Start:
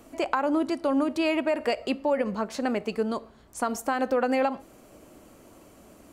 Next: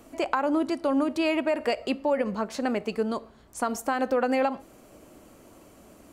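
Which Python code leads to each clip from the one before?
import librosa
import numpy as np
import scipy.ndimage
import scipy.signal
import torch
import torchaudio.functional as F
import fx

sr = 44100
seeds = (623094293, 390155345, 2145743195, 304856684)

y = x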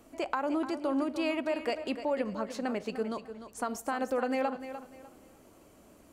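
y = fx.echo_feedback(x, sr, ms=299, feedback_pct=27, wet_db=-11)
y = F.gain(torch.from_numpy(y), -6.0).numpy()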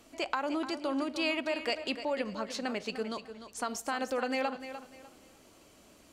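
y = fx.peak_eq(x, sr, hz=4100.0, db=11.0, octaves=2.2)
y = F.gain(torch.from_numpy(y), -3.0).numpy()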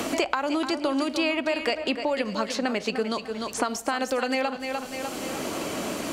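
y = fx.band_squash(x, sr, depth_pct=100)
y = F.gain(torch.from_numpy(y), 6.5).numpy()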